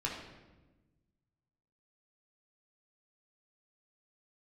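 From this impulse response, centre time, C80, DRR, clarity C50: 46 ms, 6.0 dB, -3.5 dB, 3.5 dB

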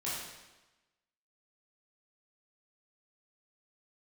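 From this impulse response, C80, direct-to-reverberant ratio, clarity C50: 2.5 dB, -9.0 dB, -0.5 dB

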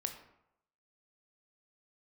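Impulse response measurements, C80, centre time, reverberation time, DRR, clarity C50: 11.0 dB, 16 ms, 0.80 s, 5.5 dB, 8.5 dB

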